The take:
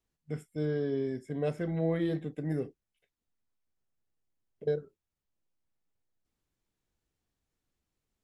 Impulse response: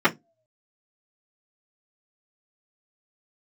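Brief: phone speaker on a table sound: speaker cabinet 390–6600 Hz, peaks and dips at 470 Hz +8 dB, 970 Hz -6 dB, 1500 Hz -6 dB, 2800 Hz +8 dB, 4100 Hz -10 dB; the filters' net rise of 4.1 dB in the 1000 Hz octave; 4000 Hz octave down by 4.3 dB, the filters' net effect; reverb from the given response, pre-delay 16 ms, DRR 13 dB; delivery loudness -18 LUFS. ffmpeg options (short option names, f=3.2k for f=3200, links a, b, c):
-filter_complex "[0:a]equalizer=f=1k:t=o:g=9,equalizer=f=4k:t=o:g=-7.5,asplit=2[a][b];[1:a]atrim=start_sample=2205,adelay=16[c];[b][c]afir=irnorm=-1:irlink=0,volume=-32dB[d];[a][d]amix=inputs=2:normalize=0,highpass=f=390:w=0.5412,highpass=f=390:w=1.3066,equalizer=f=470:t=q:w=4:g=8,equalizer=f=970:t=q:w=4:g=-6,equalizer=f=1.5k:t=q:w=4:g=-6,equalizer=f=2.8k:t=q:w=4:g=8,equalizer=f=4.1k:t=q:w=4:g=-10,lowpass=f=6.6k:w=0.5412,lowpass=f=6.6k:w=1.3066,volume=13.5dB"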